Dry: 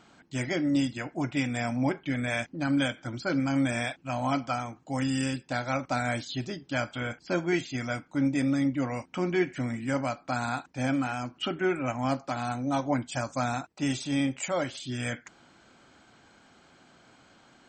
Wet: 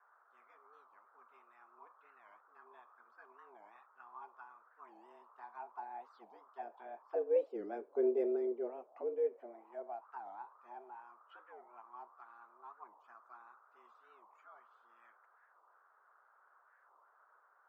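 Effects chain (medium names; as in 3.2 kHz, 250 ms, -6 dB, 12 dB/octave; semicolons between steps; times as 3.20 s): Doppler pass-by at 8.01 s, 8 m/s, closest 2.7 m; treble shelf 2.4 kHz -8.5 dB; band noise 260–1100 Hz -64 dBFS; auto-wah 380–1500 Hz, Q 4.8, down, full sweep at -37 dBFS; frequency shift +110 Hz; harmonic-percussive split percussive +3 dB; warped record 45 rpm, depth 250 cents; trim +5.5 dB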